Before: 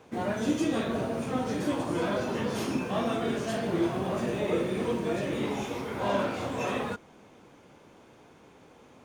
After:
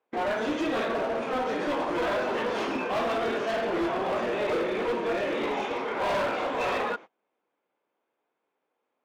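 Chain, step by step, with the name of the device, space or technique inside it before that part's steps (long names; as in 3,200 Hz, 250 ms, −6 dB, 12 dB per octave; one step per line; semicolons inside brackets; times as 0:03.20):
walkie-talkie (band-pass filter 440–2,900 Hz; hard clipping −31.5 dBFS, distortion −11 dB; noise gate −48 dBFS, range −30 dB)
level +7.5 dB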